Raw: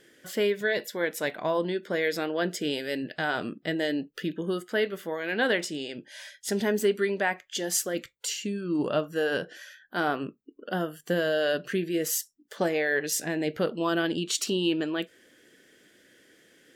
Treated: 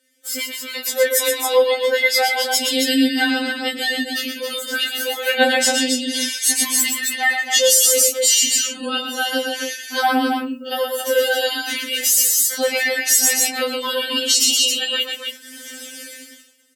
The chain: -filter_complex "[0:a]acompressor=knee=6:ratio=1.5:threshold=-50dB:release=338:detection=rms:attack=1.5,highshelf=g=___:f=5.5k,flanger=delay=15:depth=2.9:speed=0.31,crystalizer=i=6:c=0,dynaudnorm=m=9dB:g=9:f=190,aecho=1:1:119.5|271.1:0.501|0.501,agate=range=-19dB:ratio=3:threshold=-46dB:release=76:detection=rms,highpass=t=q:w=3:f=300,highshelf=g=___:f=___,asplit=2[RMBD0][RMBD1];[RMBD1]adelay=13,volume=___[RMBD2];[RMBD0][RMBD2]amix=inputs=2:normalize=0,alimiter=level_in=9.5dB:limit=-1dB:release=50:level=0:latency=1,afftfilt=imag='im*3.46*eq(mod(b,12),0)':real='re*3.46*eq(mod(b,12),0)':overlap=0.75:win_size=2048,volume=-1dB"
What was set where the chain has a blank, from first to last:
-10, 8, 2.2k, -13.5dB